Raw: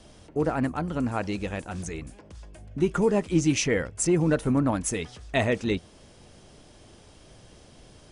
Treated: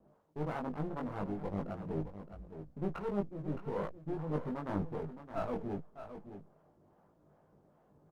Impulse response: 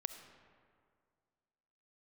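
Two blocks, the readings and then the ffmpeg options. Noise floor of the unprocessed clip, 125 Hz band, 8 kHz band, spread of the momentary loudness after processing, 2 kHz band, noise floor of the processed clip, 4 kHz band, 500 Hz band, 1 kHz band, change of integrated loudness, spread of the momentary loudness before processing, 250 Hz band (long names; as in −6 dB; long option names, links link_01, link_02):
−53 dBFS, −11.5 dB, below −35 dB, 12 LU, −19.0 dB, −69 dBFS, −25.0 dB, −12.0 dB, −8.5 dB, −13.5 dB, 12 LU, −13.0 dB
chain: -filter_complex "[0:a]lowpass=frequency=1200:width=0.5412,lowpass=frequency=1200:width=1.3066,aemphasis=mode=production:type=riaa,afwtdn=0.0178,equalizer=frequency=160:width=2.9:gain=10.5,areverse,acompressor=threshold=-38dB:ratio=16,areverse,acrossover=split=490[link_01][link_02];[link_01]aeval=exprs='val(0)*(1-0.7/2+0.7/2*cos(2*PI*2.5*n/s))':channel_layout=same[link_03];[link_02]aeval=exprs='val(0)*(1-0.7/2-0.7/2*cos(2*PI*2.5*n/s))':channel_layout=same[link_04];[link_03][link_04]amix=inputs=2:normalize=0,aeval=exprs='clip(val(0),-1,0.00158)':channel_layout=same,asplit=2[link_05][link_06];[link_06]adelay=20,volume=-2.5dB[link_07];[link_05][link_07]amix=inputs=2:normalize=0,asplit=2[link_08][link_09];[link_09]aecho=0:1:616:0.299[link_10];[link_08][link_10]amix=inputs=2:normalize=0,volume=9.5dB" -ar 48000 -c:a libopus -b:a 48k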